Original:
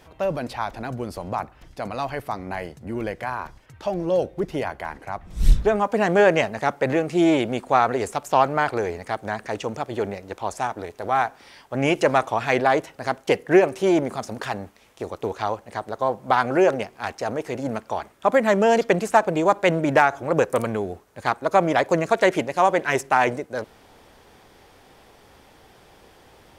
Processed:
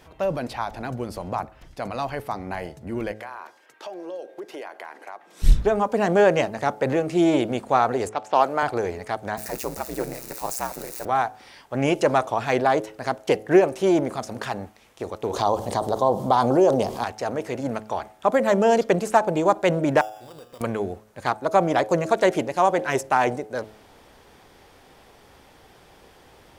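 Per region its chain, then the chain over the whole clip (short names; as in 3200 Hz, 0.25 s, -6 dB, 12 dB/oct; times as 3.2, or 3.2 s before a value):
3.11–5.42 HPF 330 Hz 24 dB/oct + compressor 4:1, threshold -33 dBFS + whine 1600 Hz -61 dBFS
8.09–8.63 HPF 270 Hz + low-pass opened by the level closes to 1700 Hz, open at -16 dBFS + high shelf 7600 Hz +6.5 dB
9.37–11.05 switching spikes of -22.5 dBFS + bell 3200 Hz -12.5 dB 0.28 oct + ring modulator 63 Hz
15.33–17.04 band shelf 1900 Hz -11 dB 1.2 oct + fast leveller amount 50%
20.01–20.61 compressor 4:1, threshold -28 dBFS + resonator 120 Hz, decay 1.4 s, mix 80% + sample-rate reducer 4200 Hz
whole clip: de-hum 107.5 Hz, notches 8; dynamic EQ 2100 Hz, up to -5 dB, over -34 dBFS, Q 1.2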